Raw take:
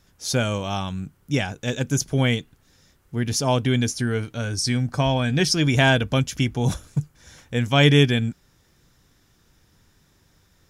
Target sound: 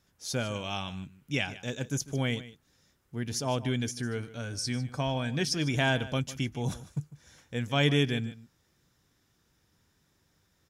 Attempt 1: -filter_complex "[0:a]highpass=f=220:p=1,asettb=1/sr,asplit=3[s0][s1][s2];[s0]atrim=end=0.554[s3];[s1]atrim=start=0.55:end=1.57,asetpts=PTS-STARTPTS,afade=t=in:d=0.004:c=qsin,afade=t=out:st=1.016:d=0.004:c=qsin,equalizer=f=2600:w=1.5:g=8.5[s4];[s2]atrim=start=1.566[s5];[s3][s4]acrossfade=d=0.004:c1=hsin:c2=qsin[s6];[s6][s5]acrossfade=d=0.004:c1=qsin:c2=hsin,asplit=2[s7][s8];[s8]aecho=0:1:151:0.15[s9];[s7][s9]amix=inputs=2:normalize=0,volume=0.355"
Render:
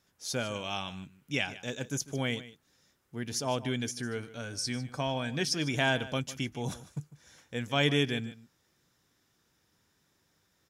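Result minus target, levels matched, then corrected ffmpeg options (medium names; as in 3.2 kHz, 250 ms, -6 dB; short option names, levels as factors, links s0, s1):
125 Hz band -3.5 dB
-filter_complex "[0:a]highpass=f=68:p=1,asettb=1/sr,asplit=3[s0][s1][s2];[s0]atrim=end=0.554[s3];[s1]atrim=start=0.55:end=1.57,asetpts=PTS-STARTPTS,afade=t=in:d=0.004:c=qsin,afade=t=out:st=1.016:d=0.004:c=qsin,equalizer=f=2600:w=1.5:g=8.5[s4];[s2]atrim=start=1.566[s5];[s3][s4]acrossfade=d=0.004:c1=hsin:c2=qsin[s6];[s6][s5]acrossfade=d=0.004:c1=qsin:c2=hsin,asplit=2[s7][s8];[s8]aecho=0:1:151:0.15[s9];[s7][s9]amix=inputs=2:normalize=0,volume=0.355"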